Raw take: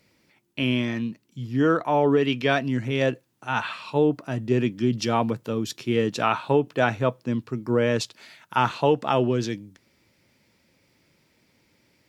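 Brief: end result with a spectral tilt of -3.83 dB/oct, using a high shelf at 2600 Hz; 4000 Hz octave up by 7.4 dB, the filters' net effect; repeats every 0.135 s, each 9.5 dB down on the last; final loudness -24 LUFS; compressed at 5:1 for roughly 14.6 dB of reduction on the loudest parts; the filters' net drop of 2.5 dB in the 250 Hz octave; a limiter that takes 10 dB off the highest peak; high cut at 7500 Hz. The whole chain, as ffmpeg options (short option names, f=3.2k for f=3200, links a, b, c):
-af "lowpass=7.5k,equalizer=f=250:t=o:g=-3,highshelf=f=2.6k:g=4.5,equalizer=f=4k:t=o:g=6.5,acompressor=threshold=-33dB:ratio=5,alimiter=level_in=1dB:limit=-24dB:level=0:latency=1,volume=-1dB,aecho=1:1:135|270|405|540:0.335|0.111|0.0365|0.012,volume=13dB"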